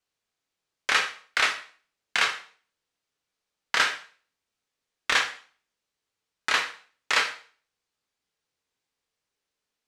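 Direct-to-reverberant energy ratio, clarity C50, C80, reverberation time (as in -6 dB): 4.0 dB, 10.5 dB, 14.5 dB, 0.45 s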